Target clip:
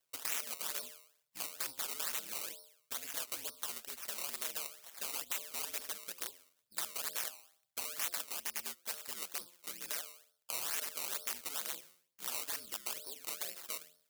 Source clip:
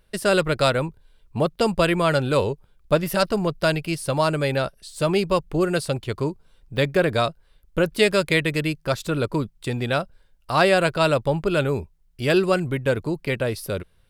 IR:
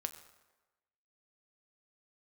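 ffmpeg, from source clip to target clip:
-af "highpass=54,bandreject=f=88.2:t=h:w=4,bandreject=f=176.4:t=h:w=4,bandreject=f=264.6:t=h:w=4,bandreject=f=352.8:t=h:w=4,bandreject=f=441:t=h:w=4,bandreject=f=529.2:t=h:w=4,bandreject=f=617.4:t=h:w=4,bandreject=f=705.6:t=h:w=4,bandreject=f=793.8:t=h:w=4,bandreject=f=882:t=h:w=4,bandreject=f=970.2:t=h:w=4,bandreject=f=1.0584k:t=h:w=4,bandreject=f=1.1466k:t=h:w=4,bandreject=f=1.2348k:t=h:w=4,bandreject=f=1.323k:t=h:w=4,bandreject=f=1.4112k:t=h:w=4,aeval=exprs='(mod(5.96*val(0)+1,2)-1)/5.96':c=same,equalizer=f=530:w=7.4:g=6.5,acompressor=threshold=-24dB:ratio=6,aeval=exprs='val(0)*sin(2*PI*80*n/s)':c=same,acrusher=samples=18:mix=1:aa=0.000001:lfo=1:lforange=18:lforate=2.2,aderivative"

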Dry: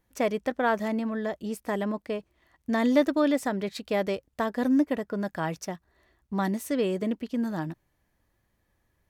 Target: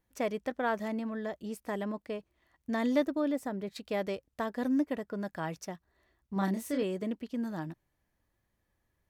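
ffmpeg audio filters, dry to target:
-filter_complex "[0:a]asettb=1/sr,asplit=3[a][b][c];[a]atrim=end=3.024[d];[b]atrim=start=3.02:end=3.76,asetpts=PTS-STARTPTS,afade=t=in:d=0.004:c=qsin,afade=t=out:st=0.736:d=0.004:c=qsin,equalizer=f=3.6k:w=0.32:g=-7.5[e];[c]atrim=start=3.756[f];[d][e]acrossfade=d=0.004:c1=hsin:c2=qsin[g];[g][f]acrossfade=d=0.004:c1=qsin:c2=hsin,asettb=1/sr,asplit=3[h][i][j];[h]atrim=end=6.334[k];[i]atrim=start=6.33:end=6.83,asetpts=PTS-STARTPTS,afade=t=in:d=0.004:c=qsin,afade=t=out:st=0.496:d=0.004:c=qsin,asplit=2[l][m];[m]adelay=31,volume=-4dB[n];[l][n]amix=inputs=2:normalize=0,atrim=end_sample=22050[o];[j]atrim=start=6.826[p];[k][o]acrossfade=d=0.004:c1=hsin:c2=qsin[q];[q][p]acrossfade=d=0.004:c1=qsin:c2=hsin,volume=-6dB"

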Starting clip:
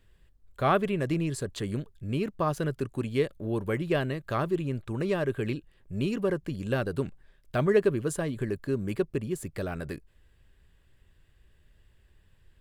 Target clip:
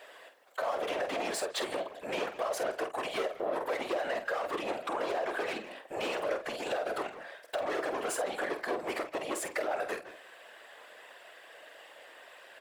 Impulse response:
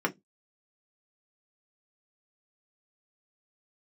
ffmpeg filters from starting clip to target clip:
-filter_complex "[0:a]asplit=2[a][b];[b]highpass=f=720:p=1,volume=32dB,asoftclip=type=tanh:threshold=-11dB[c];[a][c]amix=inputs=2:normalize=0,lowpass=f=5.7k:p=1,volume=-6dB,highpass=f=630:t=q:w=4.9,alimiter=limit=-12.5dB:level=0:latency=1:release=16,asplit=2[d][e];[e]adelay=160,highpass=300,lowpass=3.4k,asoftclip=type=hard:threshold=-21dB,volume=-14dB[f];[d][f]amix=inputs=2:normalize=0,asplit=2[g][h];[1:a]atrim=start_sample=2205[i];[h][i]afir=irnorm=-1:irlink=0,volume=-17.5dB[j];[g][j]amix=inputs=2:normalize=0,afftfilt=real='hypot(re,im)*cos(2*PI*random(0))':imag='hypot(re,im)*sin(2*PI*random(1))':win_size=512:overlap=0.75,acompressor=threshold=-34dB:ratio=2,asplit=2[k][l];[l]adelay=48,volume=-9.5dB[m];[k][m]amix=inputs=2:normalize=0,volume=-2dB"

